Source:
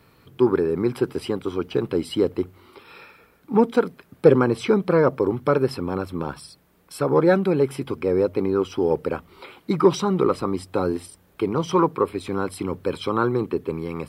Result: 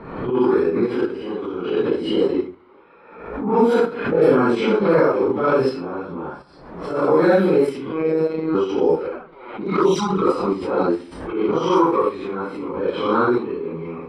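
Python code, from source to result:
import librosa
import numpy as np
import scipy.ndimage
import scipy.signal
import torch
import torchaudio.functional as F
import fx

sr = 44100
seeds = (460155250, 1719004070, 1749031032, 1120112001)

p1 = fx.phase_scramble(x, sr, seeds[0], window_ms=200)
p2 = fx.peak_eq(p1, sr, hz=96.0, db=-15.0, octaves=1.2)
p3 = p2 + fx.echo_single(p2, sr, ms=132, db=-22.0, dry=0)
p4 = fx.env_lowpass(p3, sr, base_hz=1000.0, full_db=-14.5)
p5 = fx.high_shelf(p4, sr, hz=8600.0, db=-9.0, at=(4.35, 4.87))
p6 = fx.level_steps(p5, sr, step_db=24)
p7 = p5 + F.gain(torch.from_numpy(p6), -1.0).numpy()
p8 = fx.robotise(p7, sr, hz=159.0, at=(7.92, 8.55))
p9 = fx.env_flanger(p8, sr, rest_ms=10.6, full_db=-11.5, at=(9.07, 10.26), fade=0.02)
y = fx.pre_swell(p9, sr, db_per_s=61.0)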